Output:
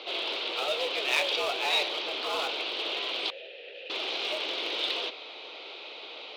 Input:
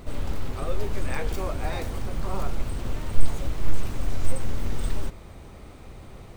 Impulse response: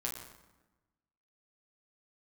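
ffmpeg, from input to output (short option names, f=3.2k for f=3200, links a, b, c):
-filter_complex "[0:a]highpass=f=290:t=q:w=0.5412,highpass=f=290:t=q:w=1.307,lowpass=f=3.6k:t=q:w=0.5176,lowpass=f=3.6k:t=q:w=0.7071,lowpass=f=3.6k:t=q:w=1.932,afreqshift=95,asettb=1/sr,asplit=3[a][b][c];[a]atrim=end=3.304[d];[b]atrim=start=3.3:end=3.9,asetpts=PTS-STARTPTS,afade=t=in:d=0.004:c=qsin,afade=t=out:st=0.596:d=0.004:c=qsin,asplit=3[e][f][g];[e]bandpass=f=530:t=q:w=8,volume=0dB[h];[f]bandpass=f=1.84k:t=q:w=8,volume=-6dB[i];[g]bandpass=f=2.48k:t=q:w=8,volume=-9dB[j];[h][i][j]amix=inputs=3:normalize=0[k];[c]atrim=start=3.896[l];[d][k]acrossfade=d=0.004:c1=hsin:c2=qsin[m];[m][l]acrossfade=d=0.004:c1=qsin:c2=hsin,asplit=2[n][o];[o]asoftclip=type=hard:threshold=-34.5dB,volume=-9dB[p];[n][p]amix=inputs=2:normalize=0,aexciter=amount=6.3:drive=8.6:freq=2.6k"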